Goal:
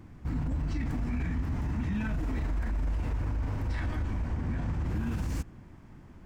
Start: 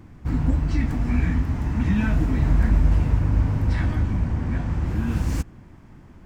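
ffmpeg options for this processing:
ffmpeg -i in.wav -filter_complex "[0:a]asettb=1/sr,asplit=3[link_01][link_02][link_03];[link_01]atrim=end=2.194[link_04];[link_02]atrim=start=2.19:end=4.37,asetpts=PTS-STARTPTS,afade=type=in:duration=0.004:curve=qsin,afade=type=out:start_time=2.176:duration=0.004:curve=qsin,equalizer=frequency=150:width=1.1:gain=-9[link_05];[link_03]atrim=start=4.366[link_06];[link_04][link_05]acrossfade=duration=0.004:curve1=hsin:curve2=qsin[link_07];[link_07][link_06]acrossfade=duration=0.004:curve1=qsin:curve2=hsin,alimiter=limit=-20.5dB:level=0:latency=1:release=21,volume=-4dB" out.wav

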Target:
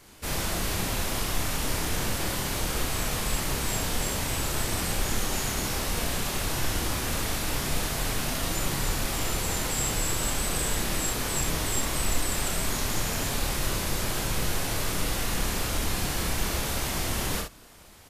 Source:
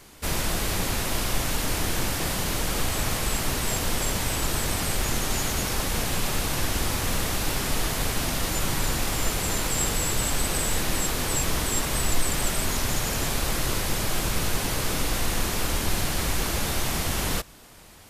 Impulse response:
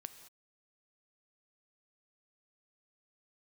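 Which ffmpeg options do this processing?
-af "aecho=1:1:29|64:0.631|0.562,volume=-4.5dB"

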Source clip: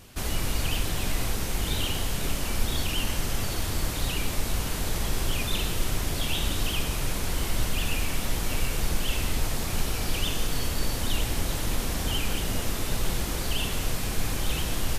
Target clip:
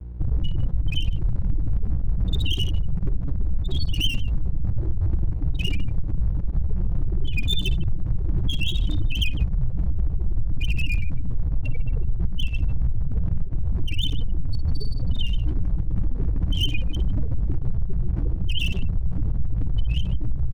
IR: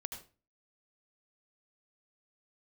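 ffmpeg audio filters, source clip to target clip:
-filter_complex "[0:a]asplit=2[link_01][link_02];[link_02]alimiter=limit=-19.5dB:level=0:latency=1:release=14,volume=0dB[link_03];[link_01][link_03]amix=inputs=2:normalize=0,atempo=0.73,aeval=exprs='val(0)+0.0282*(sin(2*PI*60*n/s)+sin(2*PI*2*60*n/s)/2+sin(2*PI*3*60*n/s)/3+sin(2*PI*4*60*n/s)/4+sin(2*PI*5*60*n/s)/5)':channel_layout=same,afftfilt=real='re*gte(hypot(re,im),0.2)':imag='im*gte(hypot(re,im),0.2)':win_size=1024:overlap=0.75,asplit=2[link_04][link_05];[link_05]aecho=0:1:56|152:0.211|0.126[link_06];[link_04][link_06]amix=inputs=2:normalize=0,aeval=exprs='sgn(val(0))*max(abs(val(0))-0.01,0)':channel_layout=same,equalizer=frequency=230:width=3.3:gain=-9.5,acompressor=threshold=-23dB:ratio=6,adynamicequalizer=threshold=0.00562:dfrequency=4200:dqfactor=0.7:tfrequency=4200:tqfactor=0.7:attack=5:release=100:ratio=0.375:range=2.5:mode=boostabove:tftype=highshelf,volume=6.5dB"

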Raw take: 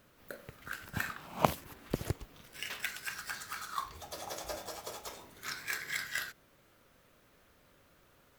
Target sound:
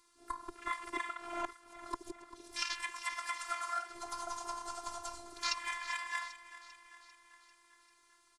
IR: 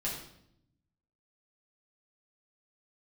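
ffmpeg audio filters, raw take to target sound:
-filter_complex "[0:a]afftfilt=real='real(if(between(b,1,1008),(2*floor((b-1)/24)+1)*24-b,b),0)':imag='imag(if(between(b,1,1008),(2*floor((b-1)/24)+1)*24-b,b),0)*if(between(b,1,1008),-1,1)':win_size=2048:overlap=0.75,acompressor=threshold=-44dB:ratio=16,highpass=54,equalizer=frequency=880:width_type=o:width=0.85:gain=-6.5,afwtdn=0.00224,asplit=2[link_01][link_02];[link_02]aecho=0:1:395|790|1185|1580|1975|2370:0.178|0.105|0.0619|0.0365|0.0215|0.0127[link_03];[link_01][link_03]amix=inputs=2:normalize=0,aresample=22050,aresample=44100,aexciter=amount=3.4:drive=6.9:freq=4000,asplit=3[link_04][link_05][link_06];[link_05]asetrate=22050,aresample=44100,atempo=2,volume=-10dB[link_07];[link_06]asetrate=58866,aresample=44100,atempo=0.749154,volume=-18dB[link_08];[link_04][link_07][link_08]amix=inputs=3:normalize=0,afftfilt=real='hypot(re,im)*cos(PI*b)':imag='0':win_size=512:overlap=0.75,equalizer=frequency=250:width_type=o:width=1:gain=-5,equalizer=frequency=500:width_type=o:width=1:gain=-6,equalizer=frequency=1000:width_type=o:width=1:gain=10,volume=11.5dB"

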